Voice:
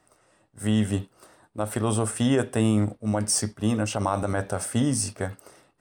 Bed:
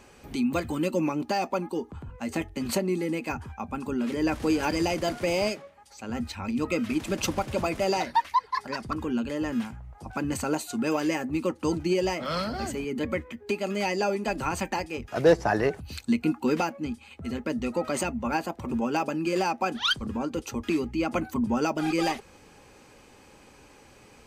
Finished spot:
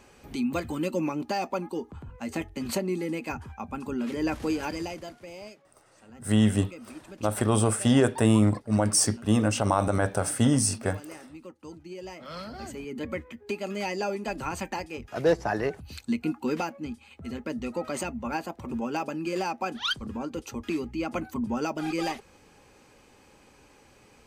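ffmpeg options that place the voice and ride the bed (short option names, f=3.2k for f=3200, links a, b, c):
-filter_complex "[0:a]adelay=5650,volume=1.5dB[a];[1:a]volume=11.5dB,afade=t=out:st=4.35:d=0.82:silence=0.177828,afade=t=in:st=11.89:d=1.35:silence=0.211349[b];[a][b]amix=inputs=2:normalize=0"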